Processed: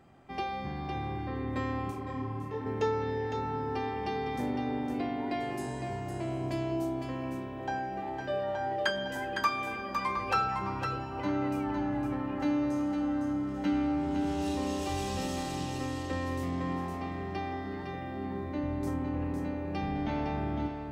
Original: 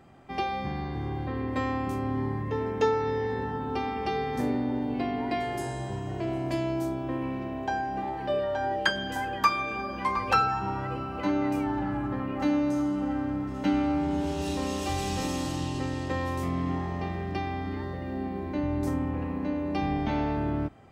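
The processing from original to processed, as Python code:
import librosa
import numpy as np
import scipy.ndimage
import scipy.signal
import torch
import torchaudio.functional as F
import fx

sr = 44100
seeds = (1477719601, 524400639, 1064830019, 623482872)

p1 = 10.0 ** (-25.0 / 20.0) * np.tanh(x / 10.0 ** (-25.0 / 20.0))
p2 = x + F.gain(torch.from_numpy(p1), -10.5).numpy()
p3 = p2 + 10.0 ** (-6.0 / 20.0) * np.pad(p2, (int(508 * sr / 1000.0), 0))[:len(p2)]
p4 = fx.detune_double(p3, sr, cents=fx.line((1.9, 38.0), (2.65, 27.0)), at=(1.9, 2.65), fade=0.02)
y = F.gain(torch.from_numpy(p4), -6.5).numpy()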